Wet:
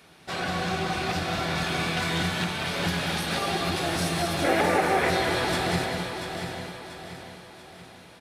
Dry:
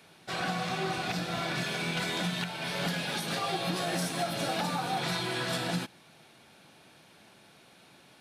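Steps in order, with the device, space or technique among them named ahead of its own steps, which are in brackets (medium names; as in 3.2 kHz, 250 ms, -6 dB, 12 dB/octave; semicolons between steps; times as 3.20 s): octave pedal (harmony voices -12 st -6 dB); 4.44–5.10 s: graphic EQ 125/250/500/2000/4000 Hz -11/+3/+10/+11/-10 dB; multi-tap echo 187/247/842 ms -7/-8/-12 dB; feedback delay 687 ms, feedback 45%, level -9 dB; trim +2 dB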